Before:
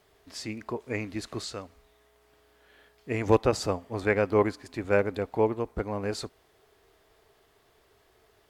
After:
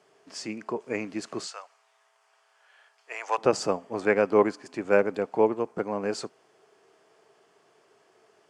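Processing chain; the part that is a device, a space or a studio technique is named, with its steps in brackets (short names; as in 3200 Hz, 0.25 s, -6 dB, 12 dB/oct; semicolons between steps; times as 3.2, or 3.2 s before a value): 1.47–3.38 HPF 720 Hz 24 dB/oct; television speaker (speaker cabinet 160–8700 Hz, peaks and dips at 260 Hz -4 dB, 2000 Hz -4 dB, 3800 Hz -10 dB); gain +3 dB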